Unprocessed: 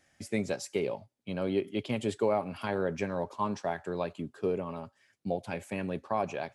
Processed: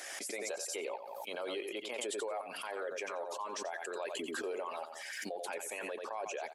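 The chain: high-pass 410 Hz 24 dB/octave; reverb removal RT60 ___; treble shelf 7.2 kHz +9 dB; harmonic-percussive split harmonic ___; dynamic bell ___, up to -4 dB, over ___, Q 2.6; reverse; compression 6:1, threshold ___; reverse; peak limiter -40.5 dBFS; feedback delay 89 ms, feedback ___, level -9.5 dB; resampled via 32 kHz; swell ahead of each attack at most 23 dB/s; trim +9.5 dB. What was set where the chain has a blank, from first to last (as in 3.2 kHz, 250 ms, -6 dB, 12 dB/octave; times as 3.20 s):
0.6 s, -10 dB, 5 kHz, -58 dBFS, -45 dBFS, 21%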